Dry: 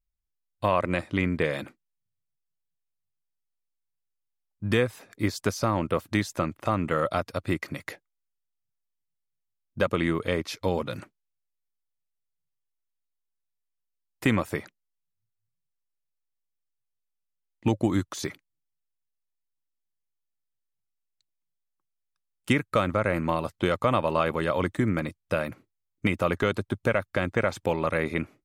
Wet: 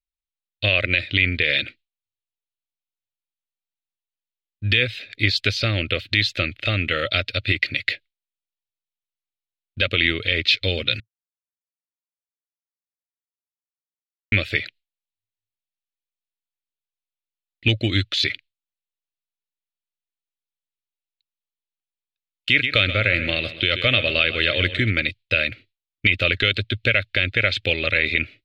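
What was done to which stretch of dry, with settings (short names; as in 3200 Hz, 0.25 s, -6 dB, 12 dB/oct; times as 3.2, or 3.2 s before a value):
11–14.32 mute
22.49–24.91 feedback echo 0.129 s, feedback 42%, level -13.5 dB
whole clip: gate with hold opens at -50 dBFS; EQ curve 110 Hz 0 dB, 160 Hz -14 dB, 250 Hz -9 dB, 610 Hz -8 dB, 980 Hz -30 dB, 1400 Hz -5 dB, 2500 Hz +13 dB, 4100 Hz +13 dB, 5900 Hz -9 dB, 9700 Hz -18 dB; limiter -12.5 dBFS; gain +8.5 dB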